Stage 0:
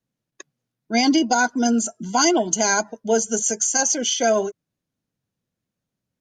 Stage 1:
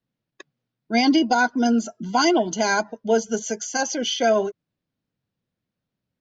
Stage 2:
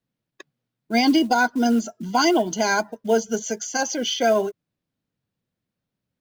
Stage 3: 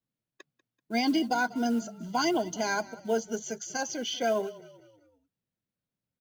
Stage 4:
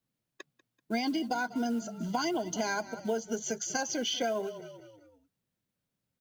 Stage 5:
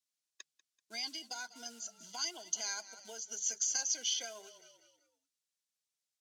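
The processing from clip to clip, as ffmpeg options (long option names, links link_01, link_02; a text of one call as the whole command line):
ffmpeg -i in.wav -af "lowpass=frequency=4900:width=0.5412,lowpass=frequency=4900:width=1.3066" out.wav
ffmpeg -i in.wav -af "acrusher=bits=7:mode=log:mix=0:aa=0.000001" out.wav
ffmpeg -i in.wav -filter_complex "[0:a]asplit=5[link_01][link_02][link_03][link_04][link_05];[link_02]adelay=192,afreqshift=-32,volume=-19.5dB[link_06];[link_03]adelay=384,afreqshift=-64,volume=-26.2dB[link_07];[link_04]adelay=576,afreqshift=-96,volume=-33dB[link_08];[link_05]adelay=768,afreqshift=-128,volume=-39.7dB[link_09];[link_01][link_06][link_07][link_08][link_09]amix=inputs=5:normalize=0,volume=-8.5dB" out.wav
ffmpeg -i in.wav -af "acompressor=threshold=-33dB:ratio=6,volume=4.5dB" out.wav
ffmpeg -i in.wav -af "bandpass=frequency=6400:width_type=q:width=1.2:csg=0,volume=4dB" out.wav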